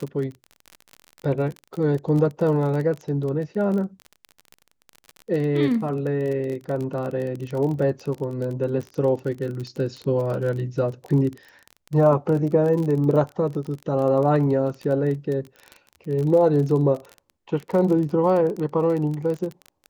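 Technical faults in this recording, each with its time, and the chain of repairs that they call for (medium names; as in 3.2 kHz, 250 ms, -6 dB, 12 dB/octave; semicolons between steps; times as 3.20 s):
crackle 29 per s -28 dBFS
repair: de-click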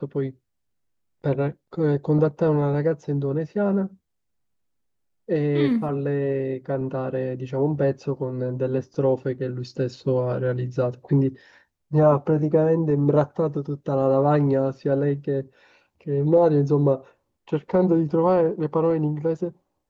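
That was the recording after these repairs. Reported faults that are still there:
nothing left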